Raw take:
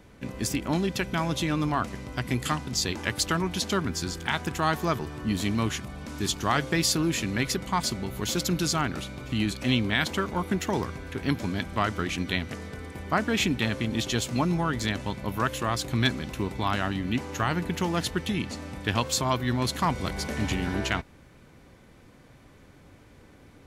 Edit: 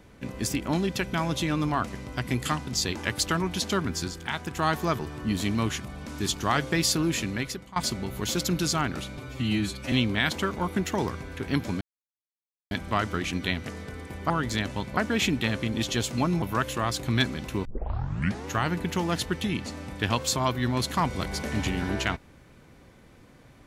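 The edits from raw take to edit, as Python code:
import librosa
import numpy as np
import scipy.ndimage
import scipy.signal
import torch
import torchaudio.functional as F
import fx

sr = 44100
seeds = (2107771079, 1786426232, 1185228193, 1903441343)

y = fx.edit(x, sr, fx.clip_gain(start_s=4.08, length_s=0.49, db=-3.5),
    fx.fade_out_to(start_s=7.2, length_s=0.56, floor_db=-20.0),
    fx.stretch_span(start_s=9.17, length_s=0.5, factor=1.5),
    fx.insert_silence(at_s=11.56, length_s=0.9),
    fx.move(start_s=14.6, length_s=0.67, to_s=13.15),
    fx.tape_start(start_s=16.5, length_s=0.84), tone=tone)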